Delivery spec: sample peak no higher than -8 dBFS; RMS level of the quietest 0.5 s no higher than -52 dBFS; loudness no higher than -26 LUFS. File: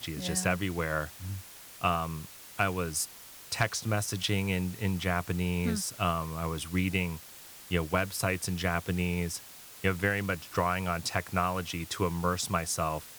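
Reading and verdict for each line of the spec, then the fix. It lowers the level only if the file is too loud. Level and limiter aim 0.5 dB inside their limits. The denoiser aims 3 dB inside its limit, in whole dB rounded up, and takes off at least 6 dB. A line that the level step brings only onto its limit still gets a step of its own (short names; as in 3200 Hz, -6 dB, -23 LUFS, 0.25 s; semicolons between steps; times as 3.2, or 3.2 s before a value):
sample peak -11.0 dBFS: OK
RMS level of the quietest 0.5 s -49 dBFS: fail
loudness -31.0 LUFS: OK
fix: denoiser 6 dB, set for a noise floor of -49 dBFS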